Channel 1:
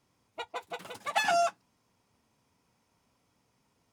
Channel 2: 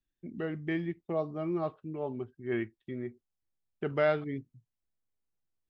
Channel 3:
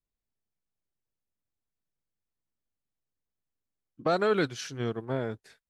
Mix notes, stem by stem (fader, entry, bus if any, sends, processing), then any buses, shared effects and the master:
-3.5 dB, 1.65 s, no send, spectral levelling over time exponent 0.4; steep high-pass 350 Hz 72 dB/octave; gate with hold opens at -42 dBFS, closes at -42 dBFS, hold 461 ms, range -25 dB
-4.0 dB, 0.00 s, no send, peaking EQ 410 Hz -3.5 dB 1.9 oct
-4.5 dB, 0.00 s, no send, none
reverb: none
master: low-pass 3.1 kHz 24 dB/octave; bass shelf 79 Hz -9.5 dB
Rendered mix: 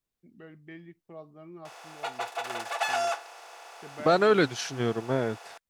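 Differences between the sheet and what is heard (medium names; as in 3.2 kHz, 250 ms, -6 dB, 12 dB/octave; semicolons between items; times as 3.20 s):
stem 2 -4.0 dB -> -10.5 dB; stem 3 -4.5 dB -> +4.5 dB; master: missing low-pass 3.1 kHz 24 dB/octave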